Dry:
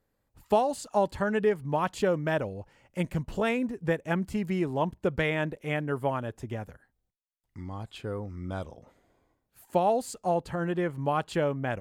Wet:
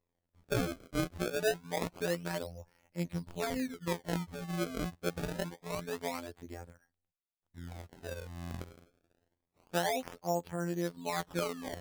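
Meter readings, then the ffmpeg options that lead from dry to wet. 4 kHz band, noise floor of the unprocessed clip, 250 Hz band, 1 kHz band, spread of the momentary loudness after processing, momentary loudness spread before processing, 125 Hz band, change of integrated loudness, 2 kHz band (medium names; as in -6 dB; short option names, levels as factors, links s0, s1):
0.0 dB, -79 dBFS, -6.5 dB, -9.5 dB, 13 LU, 12 LU, -7.0 dB, -7.0 dB, -6.5 dB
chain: -af "afftfilt=real='hypot(re,im)*cos(PI*b)':imag='0':win_size=2048:overlap=0.75,acrusher=samples=27:mix=1:aa=0.000001:lfo=1:lforange=43.2:lforate=0.26,bandreject=f=2800:w=27,volume=0.596"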